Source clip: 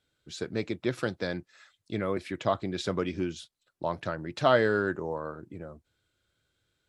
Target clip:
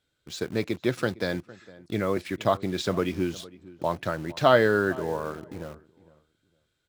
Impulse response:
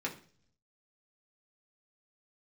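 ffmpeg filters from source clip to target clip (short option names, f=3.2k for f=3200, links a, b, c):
-filter_complex "[0:a]asplit=2[a][b];[b]acrusher=bits=6:mix=0:aa=0.000001,volume=-5.5dB[c];[a][c]amix=inputs=2:normalize=0,asplit=2[d][e];[e]adelay=458,lowpass=f=1.7k:p=1,volume=-19.5dB,asplit=2[f][g];[g]adelay=458,lowpass=f=1.7k:p=1,volume=0.21[h];[d][f][h]amix=inputs=3:normalize=0"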